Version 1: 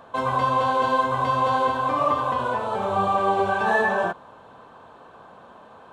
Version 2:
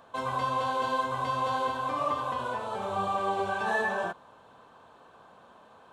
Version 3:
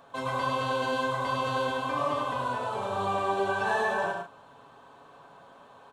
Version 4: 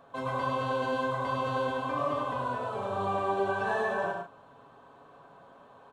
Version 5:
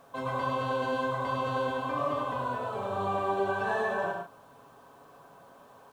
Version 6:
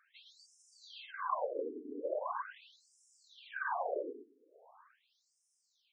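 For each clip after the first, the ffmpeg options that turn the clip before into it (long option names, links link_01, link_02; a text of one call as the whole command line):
ffmpeg -i in.wav -af "highshelf=frequency=2900:gain=7.5,volume=-8.5dB" out.wav
ffmpeg -i in.wav -filter_complex "[0:a]aecho=1:1:7.2:0.42,asplit=2[link_01][link_02];[link_02]aecho=0:1:103|143:0.596|0.316[link_03];[link_01][link_03]amix=inputs=2:normalize=0" out.wav
ffmpeg -i in.wav -af "highshelf=frequency=2100:gain=-9,bandreject=frequency=880:width=16" out.wav
ffmpeg -i in.wav -af "acrusher=bits=10:mix=0:aa=0.000001" out.wav
ffmpeg -i in.wav -af "afftfilt=real='hypot(re,im)*cos(2*PI*random(0))':imag='hypot(re,im)*sin(2*PI*random(1))':win_size=512:overlap=0.75,afftfilt=real='re*between(b*sr/1024,310*pow(7200/310,0.5+0.5*sin(2*PI*0.41*pts/sr))/1.41,310*pow(7200/310,0.5+0.5*sin(2*PI*0.41*pts/sr))*1.41)':imag='im*between(b*sr/1024,310*pow(7200/310,0.5+0.5*sin(2*PI*0.41*pts/sr))/1.41,310*pow(7200/310,0.5+0.5*sin(2*PI*0.41*pts/sr))*1.41)':win_size=1024:overlap=0.75,volume=3.5dB" out.wav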